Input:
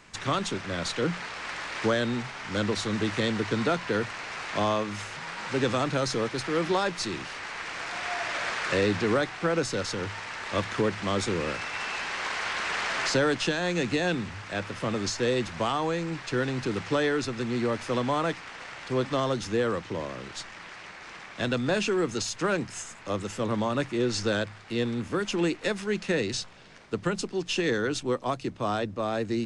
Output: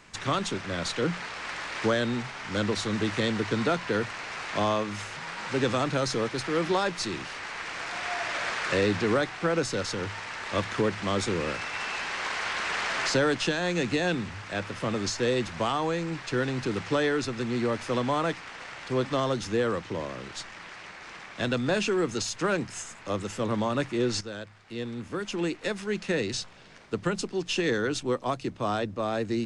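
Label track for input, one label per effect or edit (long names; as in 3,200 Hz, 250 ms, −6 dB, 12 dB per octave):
24.210000	27.120000	fade in equal-power, from −13 dB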